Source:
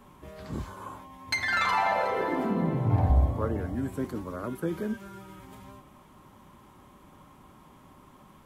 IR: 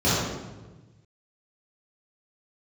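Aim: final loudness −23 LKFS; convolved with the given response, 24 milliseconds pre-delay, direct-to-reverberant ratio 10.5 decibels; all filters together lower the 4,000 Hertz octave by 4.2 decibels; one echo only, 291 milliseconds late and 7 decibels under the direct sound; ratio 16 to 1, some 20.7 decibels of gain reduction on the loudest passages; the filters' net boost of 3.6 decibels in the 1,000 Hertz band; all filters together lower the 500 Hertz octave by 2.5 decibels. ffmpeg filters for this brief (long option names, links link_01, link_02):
-filter_complex "[0:a]equalizer=frequency=500:width_type=o:gain=-5,equalizer=frequency=1000:width_type=o:gain=6,equalizer=frequency=4000:width_type=o:gain=-5,acompressor=threshold=-38dB:ratio=16,aecho=1:1:291:0.447,asplit=2[link_01][link_02];[1:a]atrim=start_sample=2205,adelay=24[link_03];[link_02][link_03]afir=irnorm=-1:irlink=0,volume=-29dB[link_04];[link_01][link_04]amix=inputs=2:normalize=0,volume=19.5dB"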